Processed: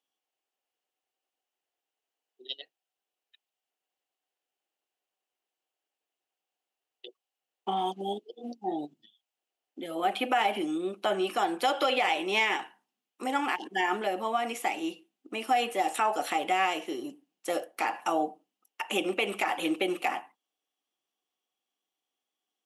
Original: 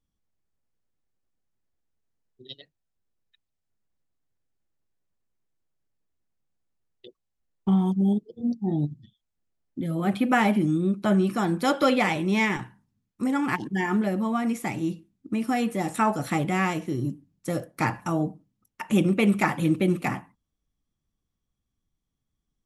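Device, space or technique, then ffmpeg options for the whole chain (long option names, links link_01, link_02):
laptop speaker: -filter_complex "[0:a]asettb=1/sr,asplit=3[link_01][link_02][link_03];[link_01]atrim=end=7.764[link_04];[link_02]atrim=start=7.76:end=8.51,asetpts=PTS-STARTPTS,afade=type=in:duration=0.004:curve=qsin,afade=type=out:start_time=0.746:duration=0.004:curve=qsin,equalizer=frequency=3300:width_type=o:width=2:gain=5[link_05];[link_03]atrim=start=8.506[link_06];[link_04][link_05]acrossfade=duration=0.004:curve1=hsin:curve2=qsin[link_07];[link_07][link_06]acrossfade=duration=0.004:curve1=qsin:curve2=hsin,highpass=frequency=360:width=0.5412,highpass=frequency=360:width=1.3066,equalizer=frequency=760:width_type=o:width=0.26:gain=9.5,equalizer=frequency=2900:width_type=o:width=0.42:gain=10.5,alimiter=limit=-16.5dB:level=0:latency=1:release=107"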